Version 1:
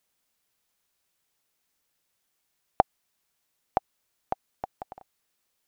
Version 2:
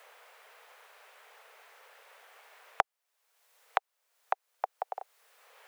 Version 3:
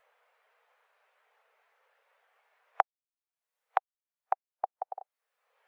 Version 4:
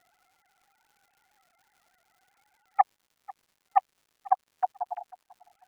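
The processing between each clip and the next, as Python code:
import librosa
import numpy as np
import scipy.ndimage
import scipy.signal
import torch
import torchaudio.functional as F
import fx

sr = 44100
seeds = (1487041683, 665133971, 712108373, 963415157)

y1 = scipy.signal.sosfilt(scipy.signal.butter(12, 430.0, 'highpass', fs=sr, output='sos'), x)
y1 = fx.band_squash(y1, sr, depth_pct=100)
y2 = fx.spectral_expand(y1, sr, expansion=1.5)
y3 = fx.sine_speech(y2, sr)
y3 = fx.dmg_crackle(y3, sr, seeds[0], per_s=240.0, level_db=-60.0)
y3 = fx.echo_feedback(y3, sr, ms=494, feedback_pct=27, wet_db=-22.0)
y3 = F.gain(torch.from_numpy(y3), 6.0).numpy()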